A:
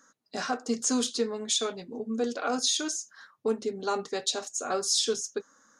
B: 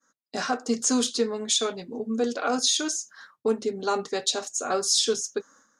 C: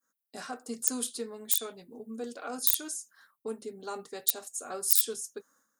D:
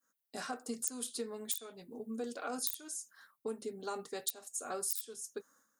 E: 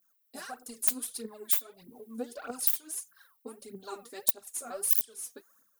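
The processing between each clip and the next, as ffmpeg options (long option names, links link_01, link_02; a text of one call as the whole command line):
ffmpeg -i in.wav -af "agate=range=-33dB:threshold=-54dB:ratio=3:detection=peak,volume=3.5dB" out.wav
ffmpeg -i in.wav -af "aeval=exprs='(mod(4.47*val(0)+1,2)-1)/4.47':channel_layout=same,aexciter=amount=12.2:drive=4.3:freq=8800,volume=-12.5dB" out.wav
ffmpeg -i in.wav -af "acompressor=threshold=-34dB:ratio=6" out.wav
ffmpeg -i in.wav -af "aexciter=amount=4.8:drive=3.2:freq=9900,aphaser=in_gain=1:out_gain=1:delay=4.4:decay=0.75:speed=1.6:type=triangular,volume=-4.5dB" out.wav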